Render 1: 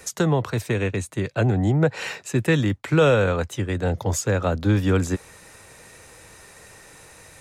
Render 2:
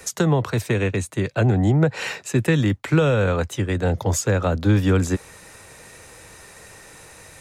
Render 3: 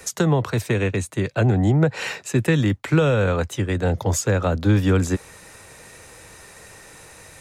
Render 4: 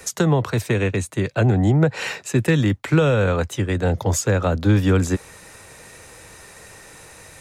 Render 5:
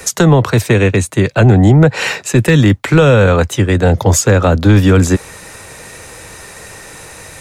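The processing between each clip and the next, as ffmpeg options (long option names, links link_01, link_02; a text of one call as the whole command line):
ffmpeg -i in.wav -filter_complex "[0:a]acrossover=split=230[link_01][link_02];[link_02]acompressor=threshold=-20dB:ratio=6[link_03];[link_01][link_03]amix=inputs=2:normalize=0,volume=2.5dB" out.wav
ffmpeg -i in.wav -af anull out.wav
ffmpeg -i in.wav -af "asoftclip=type=hard:threshold=-7.5dB,volume=1dB" out.wav
ffmpeg -i in.wav -af "apsyclip=12dB,volume=-2dB" out.wav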